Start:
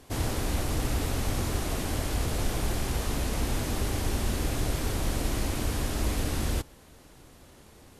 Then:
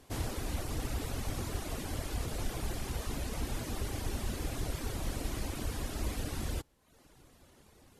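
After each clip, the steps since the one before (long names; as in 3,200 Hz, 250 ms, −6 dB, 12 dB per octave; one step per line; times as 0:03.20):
reverb reduction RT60 0.75 s
level −5.5 dB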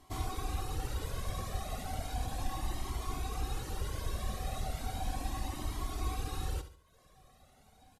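hollow resonant body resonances 760/1,100/3,800 Hz, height 15 dB, ringing for 95 ms
on a send: repeating echo 71 ms, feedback 39%, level −12 dB
on the sum: flanger whose copies keep moving one way rising 0.35 Hz
level +1 dB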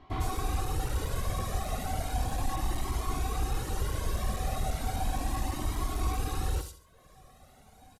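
gain into a clipping stage and back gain 29 dB
multiband delay without the direct sound lows, highs 100 ms, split 3,800 Hz
level +6 dB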